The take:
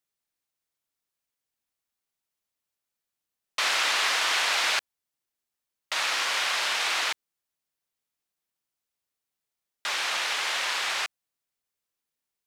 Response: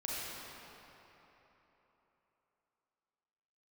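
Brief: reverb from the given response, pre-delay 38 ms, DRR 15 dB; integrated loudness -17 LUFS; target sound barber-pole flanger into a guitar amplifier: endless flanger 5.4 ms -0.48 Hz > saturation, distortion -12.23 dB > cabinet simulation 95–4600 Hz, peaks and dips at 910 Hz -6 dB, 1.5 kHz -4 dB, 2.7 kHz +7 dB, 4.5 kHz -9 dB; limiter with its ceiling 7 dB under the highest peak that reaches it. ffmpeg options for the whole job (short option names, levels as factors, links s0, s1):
-filter_complex "[0:a]alimiter=limit=0.1:level=0:latency=1,asplit=2[s0][s1];[1:a]atrim=start_sample=2205,adelay=38[s2];[s1][s2]afir=irnorm=-1:irlink=0,volume=0.119[s3];[s0][s3]amix=inputs=2:normalize=0,asplit=2[s4][s5];[s5]adelay=5.4,afreqshift=-0.48[s6];[s4][s6]amix=inputs=2:normalize=1,asoftclip=threshold=0.0266,highpass=95,equalizer=f=910:t=q:w=4:g=-6,equalizer=f=1500:t=q:w=4:g=-4,equalizer=f=2700:t=q:w=4:g=7,equalizer=f=4500:t=q:w=4:g=-9,lowpass=f=4600:w=0.5412,lowpass=f=4600:w=1.3066,volume=7.5"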